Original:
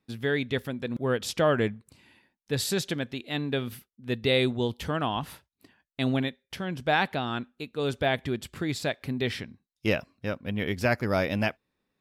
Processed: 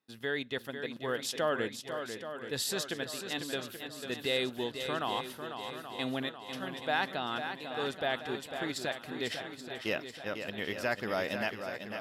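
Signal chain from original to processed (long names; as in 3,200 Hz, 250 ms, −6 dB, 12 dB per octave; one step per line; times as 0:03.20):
high-pass filter 520 Hz 6 dB per octave
notch filter 2,300 Hz, Q 9.3
in parallel at +0.5 dB: output level in coarse steps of 18 dB
on the sum: feedback echo with a long and a short gap by turns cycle 829 ms, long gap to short 1.5 to 1, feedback 49%, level −8 dB
level −7 dB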